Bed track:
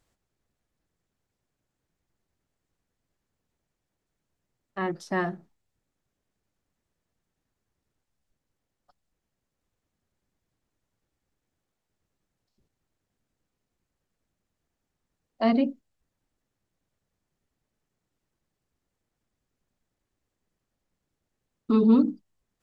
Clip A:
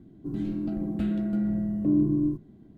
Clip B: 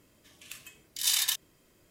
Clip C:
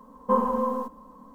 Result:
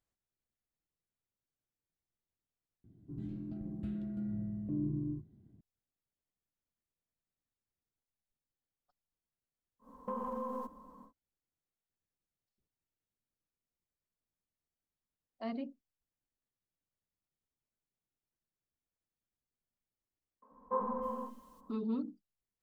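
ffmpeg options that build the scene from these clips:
-filter_complex "[3:a]asplit=2[a][b];[0:a]volume=-17dB[c];[1:a]equalizer=f=100:w=0.88:g=14[d];[a]acompressor=threshold=-28dB:ratio=6:attack=3.2:release=140:knee=1:detection=peak[e];[b]acrossover=split=270|2300[f][g][h];[f]adelay=90[i];[h]adelay=310[j];[i][g][j]amix=inputs=3:normalize=0[k];[c]asplit=2[l][m];[l]atrim=end=2.844[n];[d]atrim=end=2.77,asetpts=PTS-STARTPTS,volume=-17dB[o];[m]atrim=start=5.606[p];[e]atrim=end=1.34,asetpts=PTS-STARTPTS,volume=-7dB,afade=t=in:d=0.1,afade=t=out:st=1.24:d=0.1,adelay=9790[q];[k]atrim=end=1.34,asetpts=PTS-STARTPTS,volume=-11dB,afade=t=in:d=0.004:c=hsin,afade=t=out:st=1.336:d=0.004:c=hsin,adelay=20420[r];[n][o]acrossfade=d=0.004:c1=hsin:c2=hsin[s];[s][p]acrossfade=d=0.004:c1=hsin:c2=hsin[t];[t][q][r]amix=inputs=3:normalize=0"

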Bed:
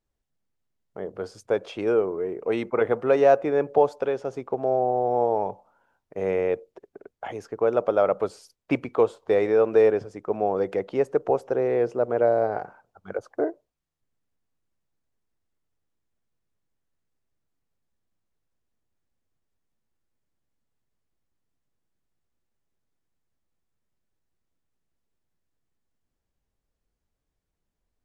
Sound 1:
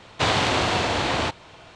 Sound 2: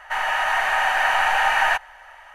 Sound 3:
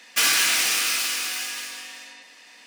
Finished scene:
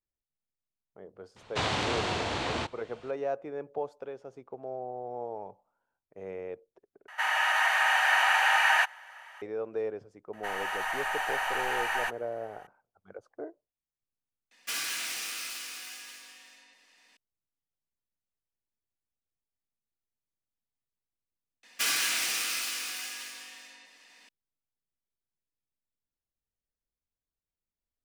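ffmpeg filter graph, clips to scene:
-filter_complex "[2:a]asplit=2[a][b];[3:a]asplit=2[c][d];[0:a]volume=-15dB[e];[a]highpass=f=1.4k:p=1[f];[b]highshelf=f=7.1k:g=10.5[g];[e]asplit=2[h][i];[h]atrim=end=7.084[j];[f]atrim=end=2.34,asetpts=PTS-STARTPTS,volume=-1dB[k];[i]atrim=start=9.416[l];[1:a]atrim=end=1.75,asetpts=PTS-STARTPTS,volume=-8.5dB,afade=t=in:d=0.004:c=hsin,afade=t=out:st=1.746:d=0.004:c=hsin,adelay=1360[m];[g]atrim=end=2.34,asetpts=PTS-STARTPTS,volume=-12dB,afade=t=in:d=0.004:c=hsin,afade=t=out:st=2.336:d=0.004:c=hsin,adelay=10330[n];[c]atrim=end=2.66,asetpts=PTS-STARTPTS,volume=-14dB,afade=t=in:d=0.004:c=hsin,afade=t=out:st=2.656:d=0.004:c=hsin,adelay=14510[o];[d]atrim=end=2.66,asetpts=PTS-STARTPTS,volume=-8.5dB,afade=t=in:d=0.004:c=hsin,afade=t=out:st=2.656:d=0.004:c=hsin,adelay=21630[p];[j][k]acrossfade=d=0.004:c1=hsin:c2=hsin[q];[q][l]acrossfade=d=0.004:c1=hsin:c2=hsin[r];[r][m][n][o][p]amix=inputs=5:normalize=0"

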